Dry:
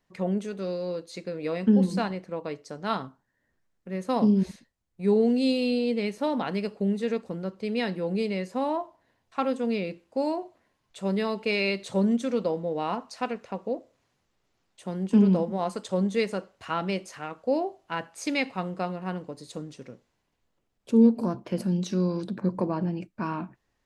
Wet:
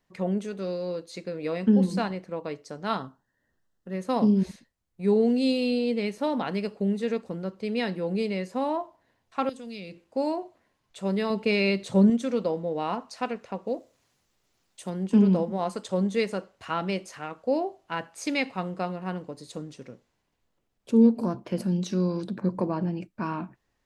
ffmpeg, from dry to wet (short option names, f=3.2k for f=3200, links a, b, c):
-filter_complex "[0:a]asettb=1/sr,asplit=3[a][b][c];[a]atrim=end=2.994[d];[b]atrim=start=2.99:end=3.94,asetpts=PTS-STARTPTS,afade=t=in:d=0.004:c=qsin,afade=t=out:st=0.946:d=0.004:c=qsin,asuperstop=centerf=2300:order=4:qfactor=4[e];[c]atrim=start=3.936[f];[d][e]acrossfade=d=0.004:c1=hsin:c2=qsin[g];[g][f]acrossfade=d=0.004:c1=qsin:c2=hsin,asettb=1/sr,asplit=3[h][i][j];[h]atrim=end=9.494[k];[i]atrim=start=9.49:end=10.05,asetpts=PTS-STARTPTS,afade=t=in:d=0.004:c=qsin,afade=t=out:st=0.556:d=0.004:c=qsin,acrossover=split=130|3000[l][m][n];[m]acompressor=threshold=-40dB:ratio=6:attack=3.2:release=140:knee=2.83:detection=peak[o];[l][o][n]amix=inputs=3:normalize=0[p];[j]atrim=start=10.046[q];[k][p]acrossfade=d=0.004:c1=hsin:c2=qsin[r];[r][q]acrossfade=d=0.004:c1=qsin:c2=hsin,asettb=1/sr,asplit=3[s][t][u];[s]atrim=end=11.304[v];[t]atrim=start=11.3:end=12.1,asetpts=PTS-STARTPTS,afade=t=in:d=0.004:c=qsin,afade=t=out:st=0.796:d=0.004:c=qsin,equalizer=f=130:w=0.44:g=7[w];[u]atrim=start=12.096[x];[v][w]acrossfade=d=0.004:c1=hsin:c2=qsin[y];[y][x]acrossfade=d=0.004:c1=qsin:c2=hsin,asettb=1/sr,asplit=3[z][aa][ab];[z]atrim=end=13.674[ac];[aa]atrim=start=13.67:end=14.9,asetpts=PTS-STARTPTS,afade=t=in:d=0.004:c=qsin,afade=t=out:st=1.226:d=0.004:c=qsin,highshelf=f=4.2k:g=10[ad];[ab]atrim=start=14.896[ae];[ac][ad]acrossfade=d=0.004:c1=hsin:c2=qsin[af];[af][ae]acrossfade=d=0.004:c1=qsin:c2=hsin"